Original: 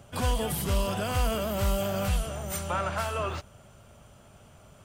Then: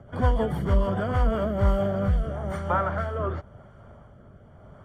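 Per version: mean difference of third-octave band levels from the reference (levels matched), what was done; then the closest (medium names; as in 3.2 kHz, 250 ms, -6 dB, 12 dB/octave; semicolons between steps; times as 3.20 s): 8.5 dB: rotary cabinet horn 6.7 Hz, later 0.9 Hz, at 0.94 s; Savitzky-Golay filter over 41 samples; trim +6.5 dB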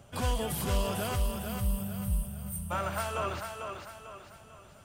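5.5 dB: time-frequency box 1.16–2.71 s, 230–8000 Hz -21 dB; on a send: thinning echo 446 ms, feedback 43%, high-pass 200 Hz, level -5.5 dB; on the sum: trim -3 dB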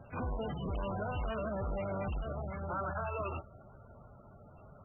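13.5 dB: saturation -31.5 dBFS, distortion -7 dB; trim -1 dB; MP3 8 kbps 22.05 kHz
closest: second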